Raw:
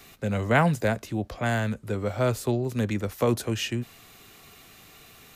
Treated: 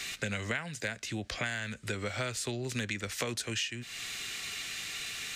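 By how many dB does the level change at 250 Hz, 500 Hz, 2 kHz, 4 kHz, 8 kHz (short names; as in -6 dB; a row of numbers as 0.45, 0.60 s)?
-12.0, -12.5, -2.5, +2.5, +3.0 dB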